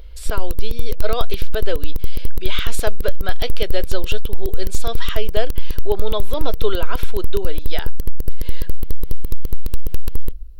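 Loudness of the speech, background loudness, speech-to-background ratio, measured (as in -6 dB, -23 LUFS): -27.5 LUFS, -31.0 LUFS, 3.5 dB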